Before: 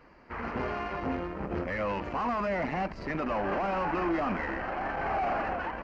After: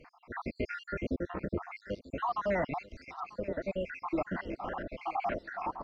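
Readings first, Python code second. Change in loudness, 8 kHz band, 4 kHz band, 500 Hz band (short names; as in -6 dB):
-5.0 dB, n/a, -5.5 dB, -3.5 dB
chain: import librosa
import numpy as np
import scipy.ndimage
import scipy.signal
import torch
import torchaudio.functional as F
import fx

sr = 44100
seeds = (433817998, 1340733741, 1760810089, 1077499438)

y = fx.spec_dropout(x, sr, seeds[0], share_pct=74)
y = fx.rider(y, sr, range_db=4, speed_s=2.0)
y = fx.echo_feedback(y, sr, ms=942, feedback_pct=38, wet_db=-19)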